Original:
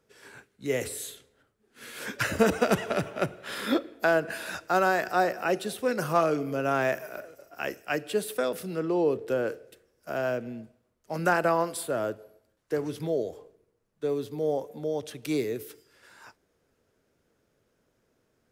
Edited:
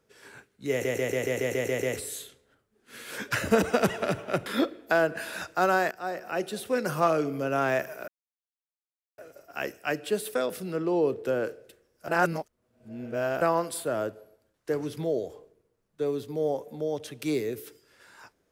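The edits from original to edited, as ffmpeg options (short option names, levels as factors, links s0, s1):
-filter_complex "[0:a]asplit=14[s0][s1][s2][s3][s4][s5][s6][s7][s8][s9][s10][s11][s12][s13];[s0]atrim=end=0.852[s14];[s1]atrim=start=0.708:end=0.852[s15];[s2]atrim=start=0.708:end=0.852[s16];[s3]atrim=start=0.708:end=0.852[s17];[s4]atrim=start=0.708:end=0.852[s18];[s5]atrim=start=0.708:end=0.852[s19];[s6]atrim=start=0.708:end=0.852[s20];[s7]atrim=start=0.708:end=0.852[s21];[s8]atrim=start=0.708:end=3.342[s22];[s9]atrim=start=3.588:end=5.04,asetpts=PTS-STARTPTS,afade=t=out:st=1.448:d=0.004:c=hsin:silence=0.177828[s23];[s10]atrim=start=5.04:end=7.21,asetpts=PTS-STARTPTS,afade=t=in:d=0.77:silence=0.177828,afade=t=out:st=2.166:d=0.004:c=hsin,apad=pad_dur=1.1[s24];[s11]atrim=start=7.21:end=10.112,asetpts=PTS-STARTPTS,afade=t=in:d=0.004:c=hsin[s25];[s12]atrim=start=10.108:end=11.442,asetpts=PTS-STARTPTS,areverse[s26];[s13]atrim=start=11.438[s27];[s14][s15]acrossfade=d=0.004:c1=hsin:c2=hsin[s28];[s28][s16]acrossfade=d=0.004:c1=hsin:c2=hsin[s29];[s29][s17]acrossfade=d=0.004:c1=hsin:c2=hsin[s30];[s30][s18]acrossfade=d=0.004:c1=hsin:c2=hsin[s31];[s31][s19]acrossfade=d=0.004:c1=hsin:c2=hsin[s32];[s32][s20]acrossfade=d=0.004:c1=hsin:c2=hsin[s33];[s33][s21]acrossfade=d=0.004:c1=hsin:c2=hsin[s34];[s34][s22]acrossfade=d=0.004:c1=hsin:c2=hsin[s35];[s23][s24][s25]concat=n=3:v=0:a=1[s36];[s35][s36]acrossfade=d=0.004:c1=hsin:c2=hsin[s37];[s37][s26]acrossfade=d=0.004:c1=hsin:c2=hsin[s38];[s38][s27]acrossfade=d=0.004:c1=hsin:c2=hsin"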